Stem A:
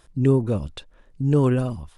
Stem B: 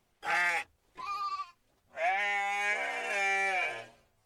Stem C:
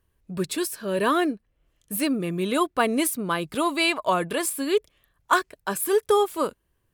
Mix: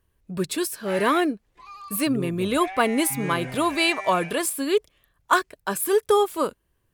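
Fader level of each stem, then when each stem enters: -14.5, -6.0, +1.0 dB; 1.90, 0.60, 0.00 s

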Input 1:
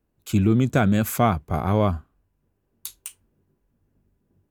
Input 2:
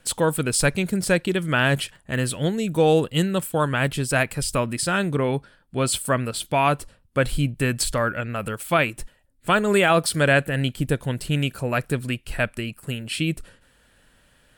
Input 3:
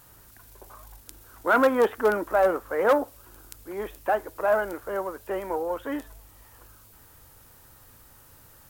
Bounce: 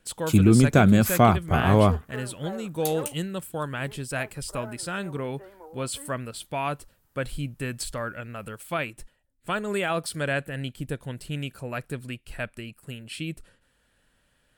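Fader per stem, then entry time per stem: +2.0, -9.0, -17.5 dB; 0.00, 0.00, 0.10 s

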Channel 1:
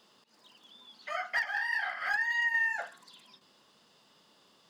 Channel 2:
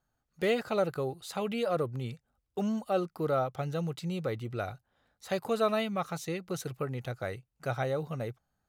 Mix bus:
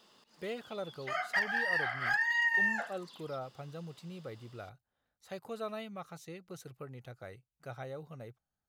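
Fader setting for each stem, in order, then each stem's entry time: 0.0, -11.5 dB; 0.00, 0.00 s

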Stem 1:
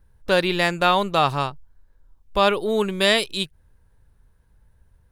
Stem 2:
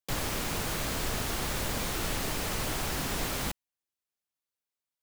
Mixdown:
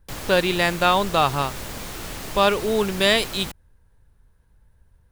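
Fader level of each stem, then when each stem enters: 0.0, -1.5 dB; 0.00, 0.00 s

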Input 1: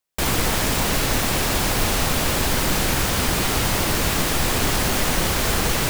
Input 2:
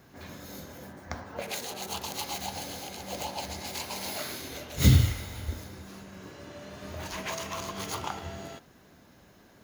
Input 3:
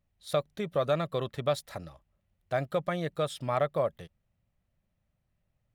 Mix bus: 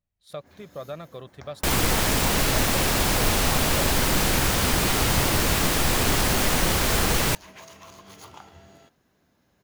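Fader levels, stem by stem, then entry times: -1.0, -10.5, -8.5 dB; 1.45, 0.30, 0.00 s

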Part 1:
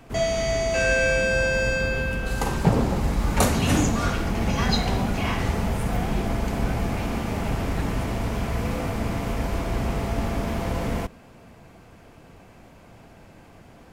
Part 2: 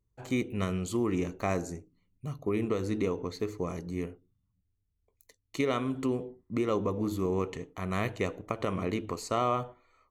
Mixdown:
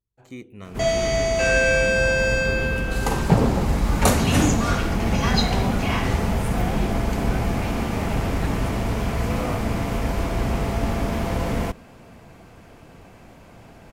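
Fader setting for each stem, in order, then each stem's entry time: +2.5, -8.5 dB; 0.65, 0.00 s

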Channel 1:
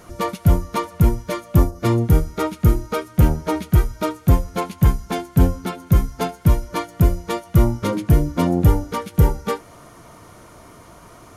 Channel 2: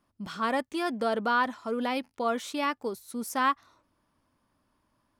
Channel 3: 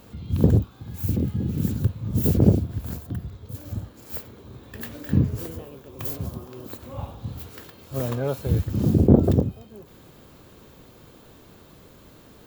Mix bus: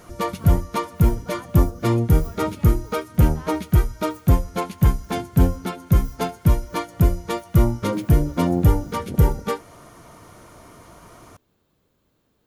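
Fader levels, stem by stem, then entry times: -1.5, -17.0, -18.5 dB; 0.00, 0.00, 0.00 s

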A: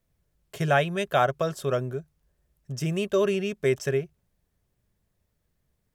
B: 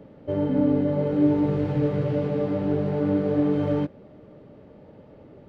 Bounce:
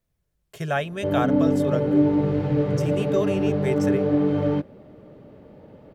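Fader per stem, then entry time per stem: -3.0, +1.5 dB; 0.00, 0.75 s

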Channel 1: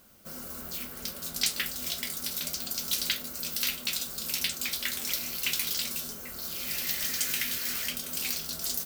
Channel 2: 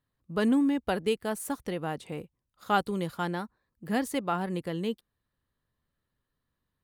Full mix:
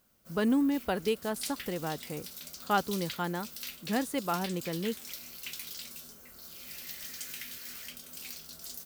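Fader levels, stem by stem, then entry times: -11.5, -2.0 dB; 0.00, 0.00 s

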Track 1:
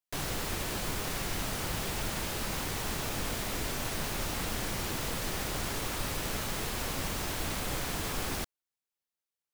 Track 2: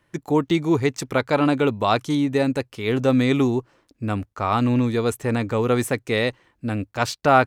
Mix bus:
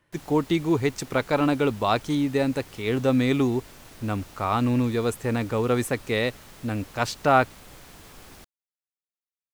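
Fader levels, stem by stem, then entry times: -13.0, -3.0 dB; 0.00, 0.00 s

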